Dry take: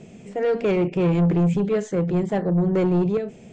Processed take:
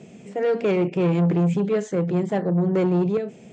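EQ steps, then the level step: high-pass 120 Hz; 0.0 dB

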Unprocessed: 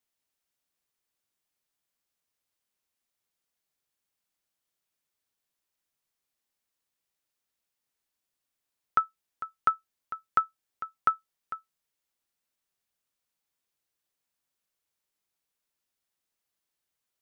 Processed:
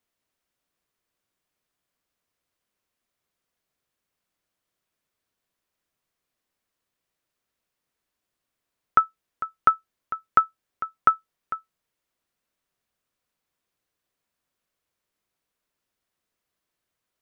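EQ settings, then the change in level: treble shelf 2.8 kHz -9 dB; band-stop 840 Hz, Q 12; +8.0 dB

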